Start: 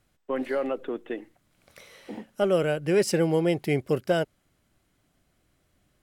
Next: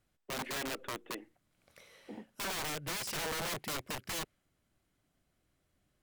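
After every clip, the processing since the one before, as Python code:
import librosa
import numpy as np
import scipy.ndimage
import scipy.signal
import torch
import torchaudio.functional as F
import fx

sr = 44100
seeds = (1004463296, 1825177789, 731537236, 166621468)

y = fx.dynamic_eq(x, sr, hz=2100.0, q=0.94, threshold_db=-45.0, ratio=4.0, max_db=5)
y = (np.mod(10.0 ** (24.0 / 20.0) * y + 1.0, 2.0) - 1.0) / 10.0 ** (24.0 / 20.0)
y = y * librosa.db_to_amplitude(-8.5)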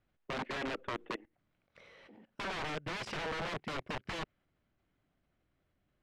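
y = fx.level_steps(x, sr, step_db=21)
y = scipy.signal.sosfilt(scipy.signal.butter(2, 3000.0, 'lowpass', fs=sr, output='sos'), y)
y = y * librosa.db_to_amplitude(6.0)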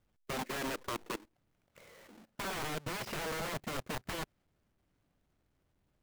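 y = fx.halfwave_hold(x, sr)
y = y * librosa.db_to_amplitude(-3.0)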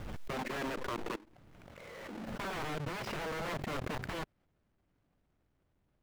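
y = fx.high_shelf(x, sr, hz=4800.0, db=-12.0)
y = fx.pre_swell(y, sr, db_per_s=21.0)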